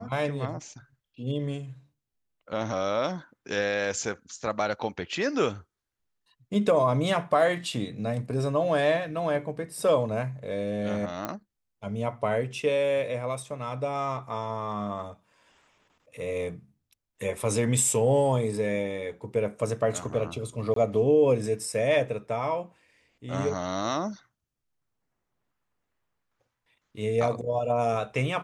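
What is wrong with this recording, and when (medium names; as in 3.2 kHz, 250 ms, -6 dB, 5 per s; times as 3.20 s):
11.25 s: pop -16 dBFS
20.74–20.76 s: dropout 23 ms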